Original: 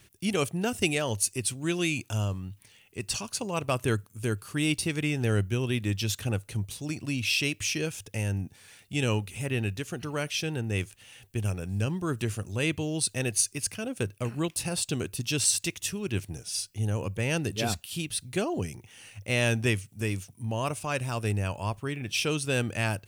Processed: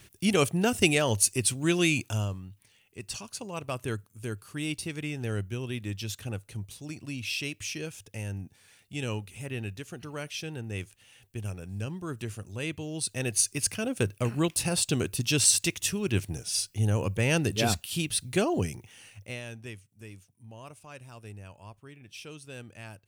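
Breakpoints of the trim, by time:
1.97 s +3.5 dB
2.48 s -6 dB
12.84 s -6 dB
13.63 s +3 dB
18.66 s +3 dB
19.23 s -5 dB
19.43 s -16 dB

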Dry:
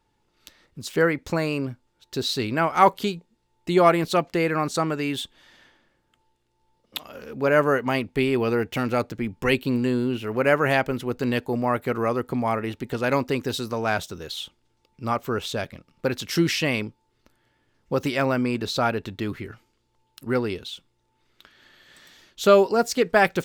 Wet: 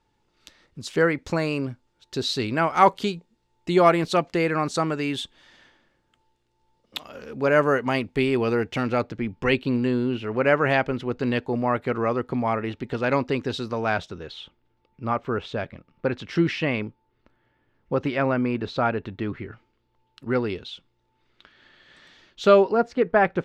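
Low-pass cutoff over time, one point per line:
8.52 s 8.1 kHz
9.05 s 4.3 kHz
13.85 s 4.3 kHz
14.42 s 2.5 kHz
19.44 s 2.5 kHz
20.45 s 4.2 kHz
22.48 s 4.2 kHz
22.89 s 1.7 kHz

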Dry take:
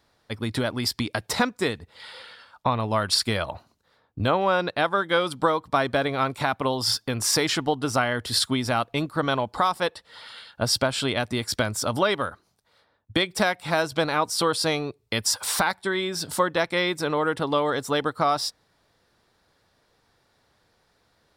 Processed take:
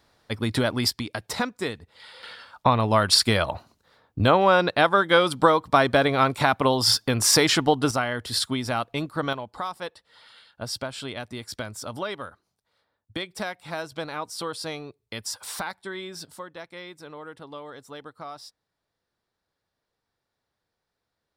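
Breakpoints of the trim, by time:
+2.5 dB
from 0.90 s -4 dB
from 2.23 s +4 dB
from 7.91 s -2.5 dB
from 9.33 s -9 dB
from 16.25 s -16.5 dB

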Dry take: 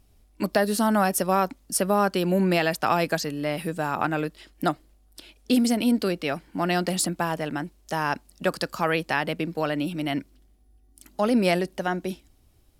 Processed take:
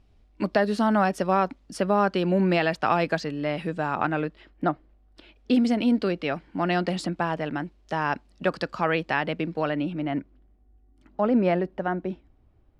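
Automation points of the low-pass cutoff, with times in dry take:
4.06 s 3.6 kHz
4.66 s 1.7 kHz
5.71 s 3.4 kHz
9.60 s 3.4 kHz
10.11 s 1.6 kHz

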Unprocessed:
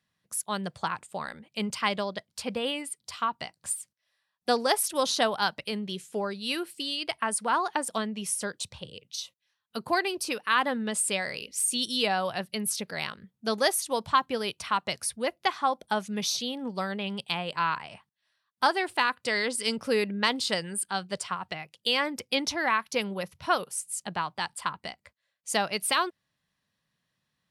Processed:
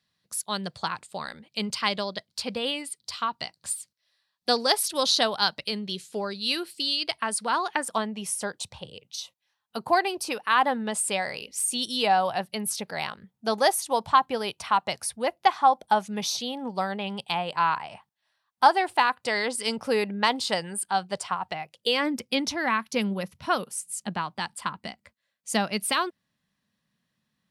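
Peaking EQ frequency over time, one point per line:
peaking EQ +9 dB 0.66 oct
7.59 s 4.3 kHz
8.00 s 810 Hz
21.61 s 810 Hz
22.20 s 220 Hz

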